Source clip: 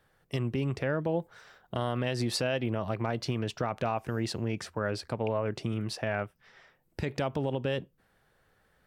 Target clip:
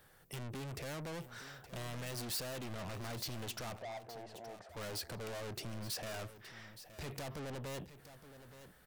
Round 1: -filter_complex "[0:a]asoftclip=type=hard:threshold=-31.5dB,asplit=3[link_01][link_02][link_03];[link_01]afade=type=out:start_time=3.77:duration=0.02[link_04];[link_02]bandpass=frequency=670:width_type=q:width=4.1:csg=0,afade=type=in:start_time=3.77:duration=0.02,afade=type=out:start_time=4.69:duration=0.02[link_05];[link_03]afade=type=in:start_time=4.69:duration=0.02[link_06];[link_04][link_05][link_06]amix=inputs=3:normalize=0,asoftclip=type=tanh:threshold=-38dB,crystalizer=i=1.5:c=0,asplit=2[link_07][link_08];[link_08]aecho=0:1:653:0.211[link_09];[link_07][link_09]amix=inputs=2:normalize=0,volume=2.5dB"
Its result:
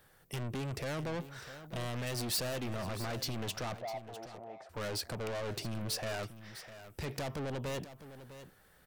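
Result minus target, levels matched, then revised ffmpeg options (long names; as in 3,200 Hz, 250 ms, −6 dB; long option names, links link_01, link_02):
echo 217 ms early; soft clipping: distortion −5 dB
-filter_complex "[0:a]asoftclip=type=hard:threshold=-31.5dB,asplit=3[link_01][link_02][link_03];[link_01]afade=type=out:start_time=3.77:duration=0.02[link_04];[link_02]bandpass=frequency=670:width_type=q:width=4.1:csg=0,afade=type=in:start_time=3.77:duration=0.02,afade=type=out:start_time=4.69:duration=0.02[link_05];[link_03]afade=type=in:start_time=4.69:duration=0.02[link_06];[link_04][link_05][link_06]amix=inputs=3:normalize=0,asoftclip=type=tanh:threshold=-45dB,crystalizer=i=1.5:c=0,asplit=2[link_07][link_08];[link_08]aecho=0:1:870:0.211[link_09];[link_07][link_09]amix=inputs=2:normalize=0,volume=2.5dB"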